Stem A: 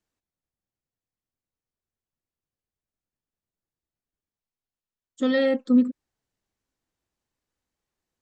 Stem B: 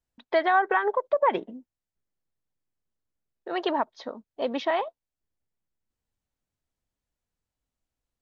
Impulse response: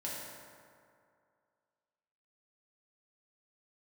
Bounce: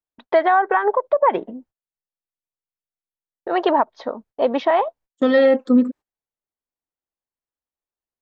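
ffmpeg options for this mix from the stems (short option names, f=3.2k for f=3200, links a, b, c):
-filter_complex "[0:a]agate=range=-21dB:threshold=-39dB:ratio=16:detection=peak,volume=-0.5dB[a];[1:a]agate=range=-29dB:threshold=-55dB:ratio=16:detection=peak,lowshelf=f=140:g=12,volume=-1.5dB[b];[a][b]amix=inputs=2:normalize=0,equalizer=f=790:w=0.37:g=12,alimiter=limit=-7dB:level=0:latency=1:release=212"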